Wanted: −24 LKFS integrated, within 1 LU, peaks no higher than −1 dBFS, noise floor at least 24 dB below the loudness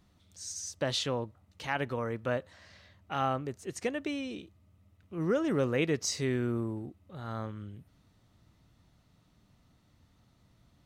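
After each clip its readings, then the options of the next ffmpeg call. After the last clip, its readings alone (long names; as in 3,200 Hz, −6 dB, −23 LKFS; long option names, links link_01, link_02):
integrated loudness −33.5 LKFS; sample peak −17.0 dBFS; target loudness −24.0 LKFS
→ -af "volume=9.5dB"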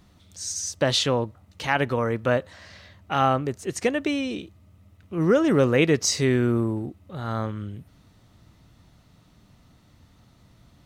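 integrated loudness −24.0 LKFS; sample peak −7.5 dBFS; background noise floor −58 dBFS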